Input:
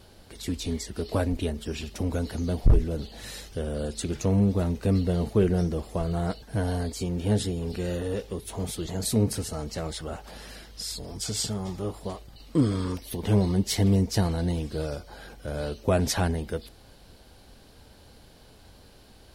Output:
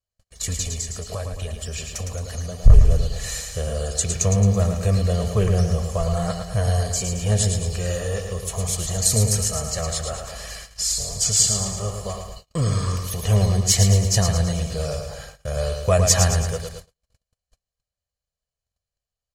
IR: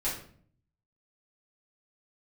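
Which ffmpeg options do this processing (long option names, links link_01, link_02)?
-filter_complex "[0:a]equalizer=frequency=6900:width_type=o:width=0.42:gain=12.5,acontrast=27,bandreject=frequency=3600:width=14,asettb=1/sr,asplit=3[link_01][link_02][link_03];[link_01]atrim=end=0.614[link_04];[link_02]atrim=start=0.61:end=2.64,asetpts=PTS-STARTPTS,afade=type=in:duration=0.004:curve=qsin,afade=type=out:start_time=2.026:duration=0.004:curve=qsin,acompressor=threshold=-27dB:ratio=5[link_05];[link_03]atrim=start=2.636[link_06];[link_04][link_05]acrossfade=duration=0.004:curve1=hsin:curve2=qsin[link_07];[link_07][link_06]acrossfade=duration=0.004:curve1=qsin:curve2=hsin,equalizer=frequency=300:width_type=o:width=1.1:gain=-12,aecho=1:1:1.7:0.6,aecho=1:1:110|220|330|440|550|660:0.501|0.256|0.13|0.0665|0.0339|0.0173,agate=range=-45dB:threshold=-36dB:ratio=16:detection=peak"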